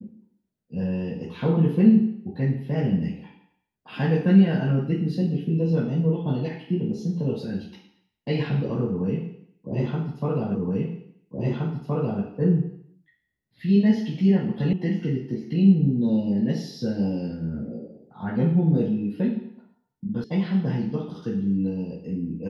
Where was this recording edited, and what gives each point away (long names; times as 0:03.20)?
0:10.55: the same again, the last 1.67 s
0:14.73: cut off before it has died away
0:20.24: cut off before it has died away